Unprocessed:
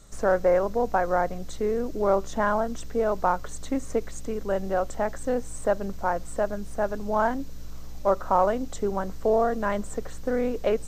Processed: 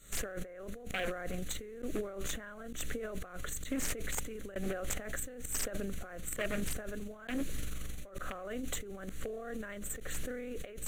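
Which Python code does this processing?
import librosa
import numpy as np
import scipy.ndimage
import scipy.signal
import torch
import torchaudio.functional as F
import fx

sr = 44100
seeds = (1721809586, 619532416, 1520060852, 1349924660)

y = fx.notch(x, sr, hz=660.0, q=19.0)
y = fx.tremolo_shape(y, sr, shape='saw_up', hz=1.1, depth_pct=95)
y = fx.over_compress(y, sr, threshold_db=-43.0, ratio=-1.0)
y = fx.peak_eq(y, sr, hz=7300.0, db=7.5, octaves=1.6)
y = 10.0 ** (-32.5 / 20.0) * (np.abs((y / 10.0 ** (-32.5 / 20.0) + 3.0) % 4.0 - 2.0) - 1.0)
y = fx.low_shelf(y, sr, hz=430.0, db=-9.5)
y = fx.fixed_phaser(y, sr, hz=2200.0, stages=4)
y = np.interp(np.arange(len(y)), np.arange(len(y))[::2], y[::2])
y = y * 10.0 ** (12.5 / 20.0)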